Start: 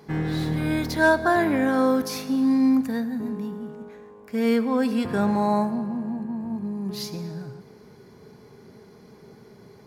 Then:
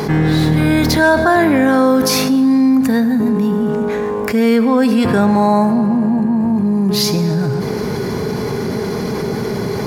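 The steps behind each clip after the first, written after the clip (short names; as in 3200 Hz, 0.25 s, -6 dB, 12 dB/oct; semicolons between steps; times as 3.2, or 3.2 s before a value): fast leveller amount 70%; gain +5.5 dB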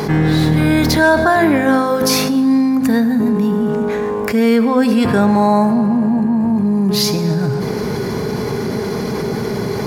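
de-hum 86.98 Hz, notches 6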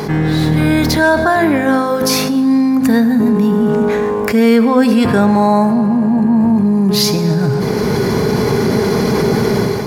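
AGC; gain -1 dB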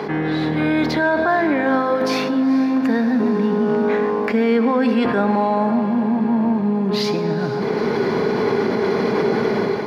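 three-band isolator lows -17 dB, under 210 Hz, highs -23 dB, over 3900 Hz; limiter -7 dBFS, peak gain reduction 5 dB; diffused feedback echo 0.474 s, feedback 73%, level -15.5 dB; gain -2.5 dB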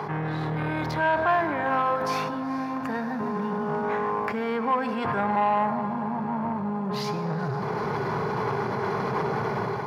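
graphic EQ 125/250/500/1000/2000/4000 Hz +10/-12/-5/+7/-4/-7 dB; core saturation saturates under 730 Hz; gain -3.5 dB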